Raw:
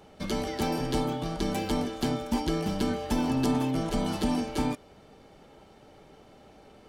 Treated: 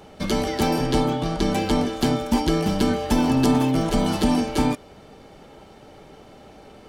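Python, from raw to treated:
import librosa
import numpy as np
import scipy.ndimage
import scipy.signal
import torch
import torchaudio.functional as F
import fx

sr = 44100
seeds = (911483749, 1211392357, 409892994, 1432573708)

y = fx.high_shelf(x, sr, hz=12000.0, db=-9.5, at=(0.84, 1.88))
y = fx.dmg_crackle(y, sr, seeds[0], per_s=81.0, level_db=-42.0, at=(3.22, 4.32), fade=0.02)
y = y * 10.0 ** (7.5 / 20.0)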